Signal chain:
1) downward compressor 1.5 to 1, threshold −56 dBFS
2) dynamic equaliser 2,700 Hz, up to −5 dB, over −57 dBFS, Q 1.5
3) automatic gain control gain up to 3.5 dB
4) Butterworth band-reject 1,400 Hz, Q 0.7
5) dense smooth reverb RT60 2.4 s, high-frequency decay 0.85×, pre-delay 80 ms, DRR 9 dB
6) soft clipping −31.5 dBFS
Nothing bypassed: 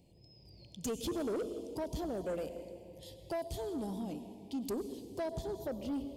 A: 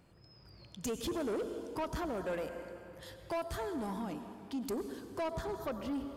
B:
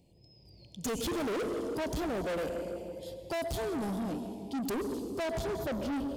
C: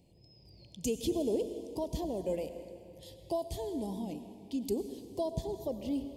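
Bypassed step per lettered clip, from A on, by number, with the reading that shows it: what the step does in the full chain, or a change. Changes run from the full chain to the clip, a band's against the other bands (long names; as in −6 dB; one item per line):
4, 2 kHz band +7.0 dB
1, average gain reduction 10.5 dB
6, distortion level −12 dB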